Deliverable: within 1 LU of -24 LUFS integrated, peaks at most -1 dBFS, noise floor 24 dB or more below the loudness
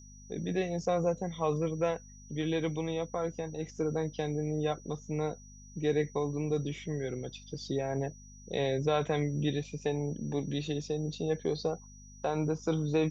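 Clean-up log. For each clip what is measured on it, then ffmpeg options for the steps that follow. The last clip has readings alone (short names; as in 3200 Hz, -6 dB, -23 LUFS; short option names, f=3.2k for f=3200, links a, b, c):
hum 50 Hz; harmonics up to 250 Hz; hum level -47 dBFS; steady tone 5800 Hz; tone level -55 dBFS; loudness -33.5 LUFS; peak -16.5 dBFS; loudness target -24.0 LUFS
-> -af "bandreject=f=50:t=h:w=4,bandreject=f=100:t=h:w=4,bandreject=f=150:t=h:w=4,bandreject=f=200:t=h:w=4,bandreject=f=250:t=h:w=4"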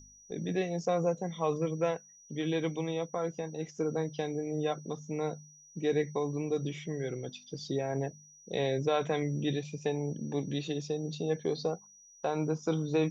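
hum none; steady tone 5800 Hz; tone level -55 dBFS
-> -af "bandreject=f=5.8k:w=30"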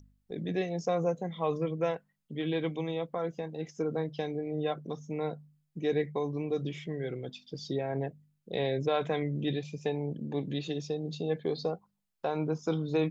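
steady tone none; loudness -34.0 LUFS; peak -17.0 dBFS; loudness target -24.0 LUFS
-> -af "volume=10dB"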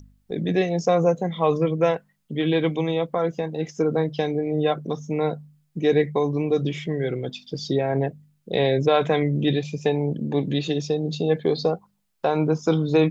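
loudness -24.0 LUFS; peak -7.0 dBFS; noise floor -68 dBFS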